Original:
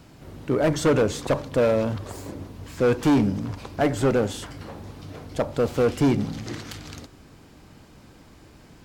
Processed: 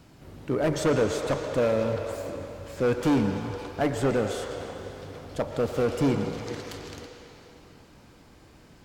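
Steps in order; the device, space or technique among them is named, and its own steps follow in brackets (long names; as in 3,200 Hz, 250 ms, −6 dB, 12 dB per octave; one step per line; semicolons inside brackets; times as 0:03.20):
filtered reverb send (on a send: high-pass filter 380 Hz 24 dB per octave + low-pass filter 7,000 Hz 12 dB per octave + convolution reverb RT60 3.6 s, pre-delay 102 ms, DRR 4 dB)
on the sum: level −4 dB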